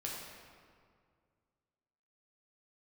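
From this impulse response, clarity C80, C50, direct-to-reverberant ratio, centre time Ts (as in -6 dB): 2.0 dB, 0.0 dB, -4.0 dB, 95 ms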